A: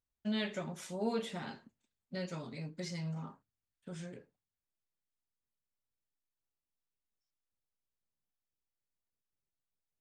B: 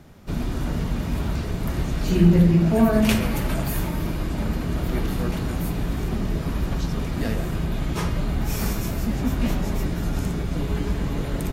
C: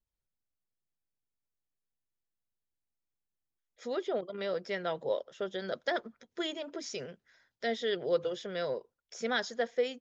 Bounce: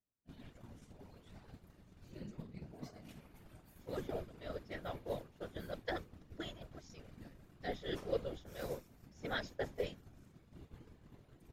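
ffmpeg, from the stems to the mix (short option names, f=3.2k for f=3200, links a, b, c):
-filter_complex "[0:a]alimiter=level_in=10dB:limit=-24dB:level=0:latency=1:release=12,volume=-10dB,volume=-3dB[a];[1:a]bandreject=f=60:t=h:w=6,bandreject=f=120:t=h:w=6,bandreject=f=180:t=h:w=6,acompressor=threshold=-25dB:ratio=6,volume=-11dB[b];[2:a]volume=-2dB[c];[a][b][c]amix=inputs=3:normalize=0,afftfilt=real='hypot(re,im)*cos(2*PI*random(0))':imag='hypot(re,im)*sin(2*PI*random(1))':win_size=512:overlap=0.75,agate=range=-33dB:threshold=-36dB:ratio=3:detection=peak"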